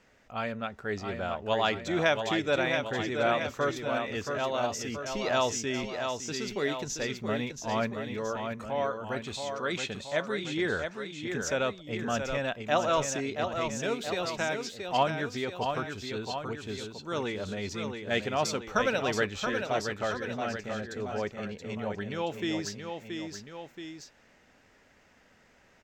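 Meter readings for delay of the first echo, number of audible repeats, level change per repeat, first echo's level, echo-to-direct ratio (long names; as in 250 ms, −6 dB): 676 ms, 2, −4.5 dB, −6.0 dB, −4.5 dB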